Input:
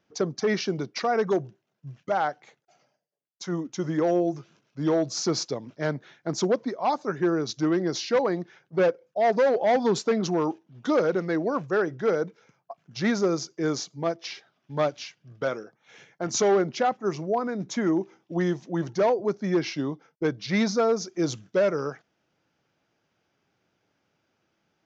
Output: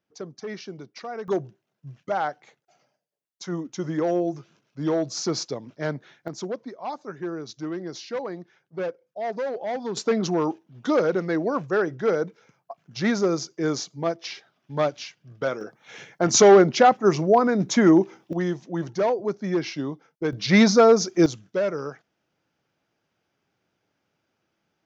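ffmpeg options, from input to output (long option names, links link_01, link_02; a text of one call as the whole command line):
ffmpeg -i in.wav -af "asetnsamples=nb_out_samples=441:pad=0,asendcmd='1.28 volume volume -0.5dB;6.28 volume volume -7.5dB;9.97 volume volume 1.5dB;15.61 volume volume 8.5dB;18.33 volume volume -0.5dB;20.33 volume volume 8dB;21.26 volume volume -2dB',volume=-10dB" out.wav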